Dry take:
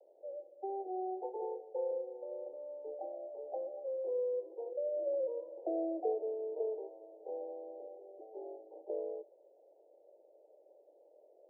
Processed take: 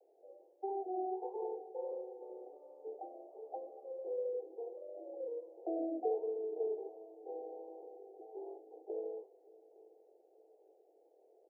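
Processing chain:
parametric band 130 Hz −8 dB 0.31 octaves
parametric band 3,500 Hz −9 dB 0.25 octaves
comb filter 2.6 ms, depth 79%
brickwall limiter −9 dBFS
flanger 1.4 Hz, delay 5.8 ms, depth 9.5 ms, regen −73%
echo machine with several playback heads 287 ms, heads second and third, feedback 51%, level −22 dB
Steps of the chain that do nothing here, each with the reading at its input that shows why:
parametric band 130 Hz: nothing at its input below 290 Hz
parametric band 3,500 Hz: nothing at its input above 810 Hz
brickwall limiter −9 dBFS: peak of its input −20.0 dBFS

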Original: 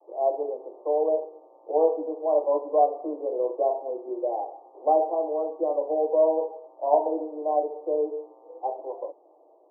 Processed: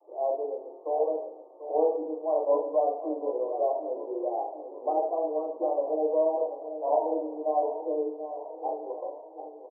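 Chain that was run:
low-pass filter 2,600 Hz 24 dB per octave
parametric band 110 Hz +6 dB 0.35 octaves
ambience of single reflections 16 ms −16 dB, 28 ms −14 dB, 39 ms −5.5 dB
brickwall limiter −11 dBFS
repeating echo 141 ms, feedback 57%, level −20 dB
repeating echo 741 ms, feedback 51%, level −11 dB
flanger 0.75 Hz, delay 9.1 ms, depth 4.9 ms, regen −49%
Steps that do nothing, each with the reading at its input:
low-pass filter 2,600 Hz: nothing at its input above 1,100 Hz
parametric band 110 Hz: nothing at its input below 270 Hz

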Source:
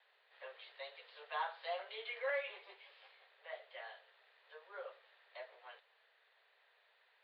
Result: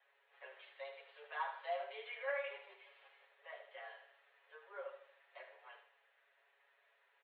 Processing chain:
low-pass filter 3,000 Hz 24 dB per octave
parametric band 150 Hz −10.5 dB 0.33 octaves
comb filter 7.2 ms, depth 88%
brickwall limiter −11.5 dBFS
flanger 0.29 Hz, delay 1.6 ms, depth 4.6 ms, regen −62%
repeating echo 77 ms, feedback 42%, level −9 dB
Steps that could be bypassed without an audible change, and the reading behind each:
parametric band 150 Hz: nothing at its input below 360 Hz
brickwall limiter −11.5 dBFS: peak of its input −23.0 dBFS

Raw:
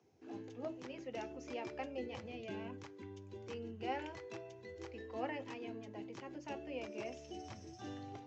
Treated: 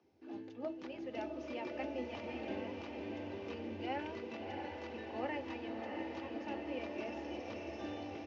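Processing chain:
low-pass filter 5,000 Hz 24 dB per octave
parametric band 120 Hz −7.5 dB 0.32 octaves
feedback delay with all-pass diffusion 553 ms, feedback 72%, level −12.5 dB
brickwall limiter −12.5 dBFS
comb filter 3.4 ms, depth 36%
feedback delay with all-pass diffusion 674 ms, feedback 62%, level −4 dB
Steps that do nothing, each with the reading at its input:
brickwall limiter −12.5 dBFS: peak of its input −26.5 dBFS

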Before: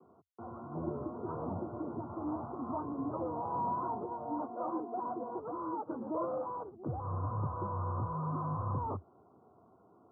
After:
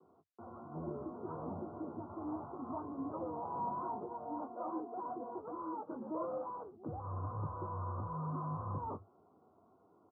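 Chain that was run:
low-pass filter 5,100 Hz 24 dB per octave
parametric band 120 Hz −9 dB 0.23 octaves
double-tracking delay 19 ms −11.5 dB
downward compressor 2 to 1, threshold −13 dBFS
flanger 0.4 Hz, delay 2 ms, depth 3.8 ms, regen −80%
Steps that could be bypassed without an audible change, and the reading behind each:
low-pass filter 5,100 Hz: nothing at its input above 1,400 Hz
downward compressor, threshold −13 dBFS: peak of its input −23.5 dBFS

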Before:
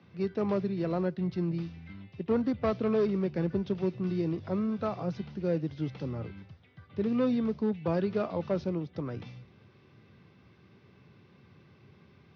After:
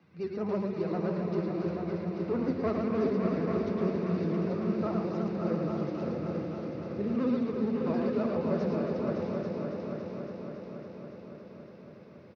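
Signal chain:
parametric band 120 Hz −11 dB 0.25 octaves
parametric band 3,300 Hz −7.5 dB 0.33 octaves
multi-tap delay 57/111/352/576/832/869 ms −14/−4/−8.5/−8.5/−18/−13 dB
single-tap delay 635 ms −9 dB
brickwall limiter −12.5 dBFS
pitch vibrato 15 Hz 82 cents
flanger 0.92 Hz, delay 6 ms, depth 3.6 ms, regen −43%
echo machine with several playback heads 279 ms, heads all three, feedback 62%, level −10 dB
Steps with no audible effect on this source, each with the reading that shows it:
brickwall limiter −12.5 dBFS: peak of its input −14.5 dBFS

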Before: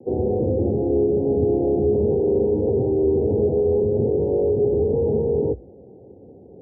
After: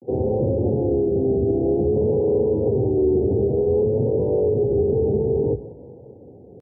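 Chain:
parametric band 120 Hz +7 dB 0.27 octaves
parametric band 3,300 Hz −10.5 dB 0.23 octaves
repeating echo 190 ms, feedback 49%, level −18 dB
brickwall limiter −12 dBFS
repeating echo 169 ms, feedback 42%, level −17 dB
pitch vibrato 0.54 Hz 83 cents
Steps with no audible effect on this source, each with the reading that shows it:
parametric band 3,300 Hz: nothing at its input above 760 Hz

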